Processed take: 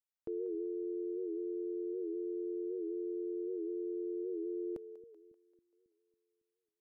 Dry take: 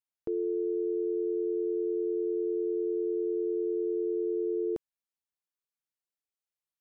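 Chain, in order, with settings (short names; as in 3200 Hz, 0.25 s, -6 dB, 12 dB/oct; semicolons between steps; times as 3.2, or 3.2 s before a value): split-band echo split 350 Hz, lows 0.275 s, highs 0.193 s, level -15 dB; record warp 78 rpm, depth 100 cents; gain -7.5 dB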